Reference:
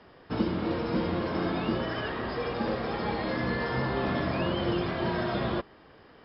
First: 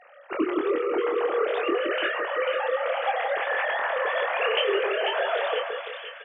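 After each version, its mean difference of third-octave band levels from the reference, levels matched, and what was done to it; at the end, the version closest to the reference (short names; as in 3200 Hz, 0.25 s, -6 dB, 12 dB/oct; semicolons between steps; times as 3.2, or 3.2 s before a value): 13.5 dB: sine-wave speech; low shelf 350 Hz -10.5 dB; doubler 25 ms -5 dB; split-band echo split 1600 Hz, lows 0.169 s, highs 0.493 s, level -5 dB; gain +4 dB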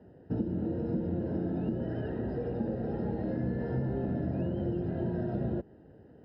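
8.5 dB: running mean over 39 samples; compressor, threshold -32 dBFS, peak gain reduction 10 dB; HPF 69 Hz; low shelf 280 Hz +7 dB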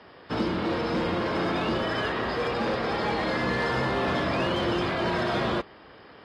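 4.0 dB: low shelf 310 Hz -6.5 dB; in parallel at -6 dB: wavefolder -30.5 dBFS; on the sum: HPF 41 Hz 12 dB/oct; gain +2.5 dB; AAC 32 kbps 32000 Hz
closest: third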